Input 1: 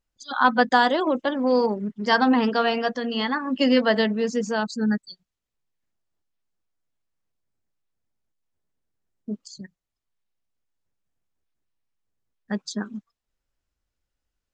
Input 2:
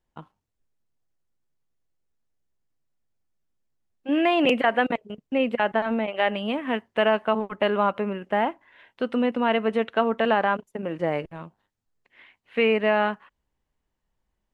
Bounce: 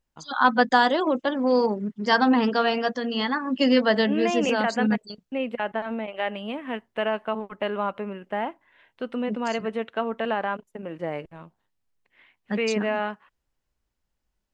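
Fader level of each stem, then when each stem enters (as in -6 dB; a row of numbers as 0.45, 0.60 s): -0.5, -5.0 dB; 0.00, 0.00 s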